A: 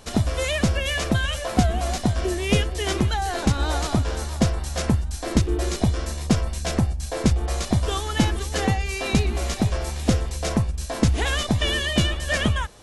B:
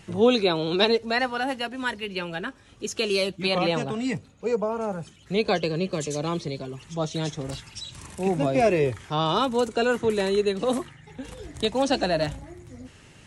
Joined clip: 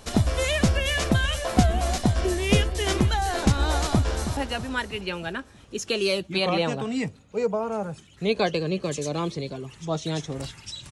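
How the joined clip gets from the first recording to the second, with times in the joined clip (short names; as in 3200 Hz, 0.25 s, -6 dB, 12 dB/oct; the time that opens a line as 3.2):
A
3.94–4.37 echo throw 0.32 s, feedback 50%, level -9 dB
4.37 switch to B from 1.46 s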